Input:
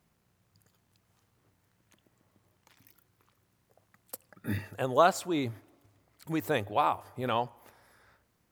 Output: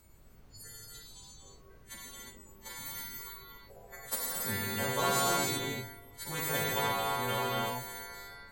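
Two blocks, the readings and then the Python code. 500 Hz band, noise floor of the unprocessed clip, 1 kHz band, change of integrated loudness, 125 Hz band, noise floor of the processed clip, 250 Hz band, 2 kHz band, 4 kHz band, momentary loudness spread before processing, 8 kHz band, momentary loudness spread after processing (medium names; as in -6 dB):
-4.5 dB, -73 dBFS, -3.0 dB, -2.5 dB, -0.5 dB, -56 dBFS, -5.0 dB, +3.5 dB, +7.0 dB, 17 LU, +11.5 dB, 21 LU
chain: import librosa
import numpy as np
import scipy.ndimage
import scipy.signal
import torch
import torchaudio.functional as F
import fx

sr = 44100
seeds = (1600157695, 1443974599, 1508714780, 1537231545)

y = fx.freq_snap(x, sr, grid_st=2)
y = fx.noise_reduce_blind(y, sr, reduce_db=29)
y = fx.notch_comb(y, sr, f0_hz=310.0)
y = fx.rider(y, sr, range_db=4, speed_s=2.0)
y = fx.cheby_harmonics(y, sr, harmonics=(8,), levels_db=(-44,), full_scale_db=-11.0)
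y = fx.dmg_noise_colour(y, sr, seeds[0], colour='brown', level_db=-70.0)
y = fx.rev_gated(y, sr, seeds[1], gate_ms=380, shape='flat', drr_db=-4.5)
y = fx.spectral_comp(y, sr, ratio=2.0)
y = y * librosa.db_to_amplitude(-8.5)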